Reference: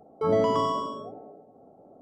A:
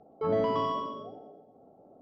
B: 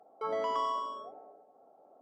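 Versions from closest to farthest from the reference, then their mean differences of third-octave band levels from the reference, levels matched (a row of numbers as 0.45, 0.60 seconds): A, B; 1.5, 4.5 decibels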